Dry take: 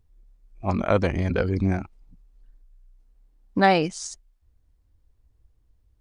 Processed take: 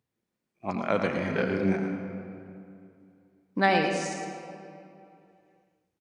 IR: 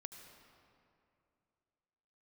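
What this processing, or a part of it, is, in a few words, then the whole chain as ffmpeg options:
PA in a hall: -filter_complex "[0:a]asettb=1/sr,asplit=3[link_01][link_02][link_03];[link_01]atrim=end=1.204[link_04];[link_02]atrim=start=1.2:end=1.76,asetpts=PTS-STARTPTS,afade=type=in:duration=0.004:curve=qsin,afade=type=out:start_time=0.556:duration=0.004:curve=qsin,asplit=2[link_05][link_06];[link_06]adelay=31,volume=-2dB[link_07];[link_05][link_07]amix=inputs=2:normalize=0,atrim=end_sample=24696[link_08];[link_03]atrim=start=1.756[link_09];[link_04][link_08]acrossfade=duration=0.004:curve1=hsin:curve2=qsin[link_10];[link_10][link_09]acrossfade=duration=0.004:curve1=qsin:curve2=hsin,highpass=frequency=140:width=0.5412,highpass=frequency=140:width=1.3066,equalizer=frequency=2100:width_type=o:width=1.2:gain=4.5,aecho=1:1:112:0.355[link_11];[1:a]atrim=start_sample=2205[link_12];[link_11][link_12]afir=irnorm=-1:irlink=0"

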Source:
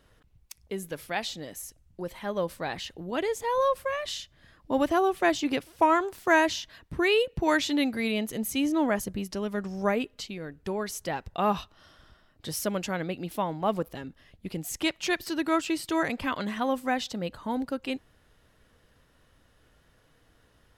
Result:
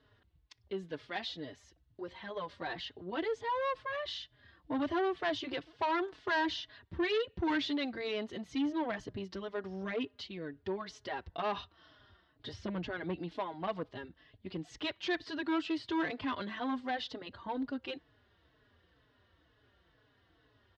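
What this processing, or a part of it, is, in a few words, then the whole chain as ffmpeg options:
barber-pole flanger into a guitar amplifier: -filter_complex "[0:a]asettb=1/sr,asplit=3[link_01][link_02][link_03];[link_01]atrim=end=12.534[link_04];[link_02]atrim=start=12.53:end=13.15,asetpts=PTS-STARTPTS,afade=type=in:duration=0.004:curve=qsin,afade=type=out:start_time=0.616:duration=0.004:curve=qsin,aemphasis=mode=reproduction:type=bsi[link_05];[link_03]atrim=start=13.146[link_06];[link_04][link_05]acrossfade=duration=0.004:curve1=hsin:curve2=qsin[link_07];[link_07][link_06]acrossfade=duration=0.004:curve1=qsin:curve2=hsin,asplit=2[link_08][link_09];[link_09]adelay=4.2,afreqshift=-2.1[link_10];[link_08][link_10]amix=inputs=2:normalize=1,asoftclip=type=tanh:threshold=-26.5dB,highpass=78,equalizer=frequency=150:width_type=q:width=4:gain=-7,equalizer=frequency=210:width_type=q:width=4:gain=-9,equalizer=frequency=530:width_type=q:width=4:gain=-6,equalizer=frequency=810:width_type=q:width=4:gain=-4,equalizer=frequency=1300:width_type=q:width=4:gain=-4,equalizer=frequency=2400:width_type=q:width=4:gain=-7,lowpass=frequency=4100:width=0.5412,lowpass=frequency=4100:width=1.3066,volume=1.5dB"

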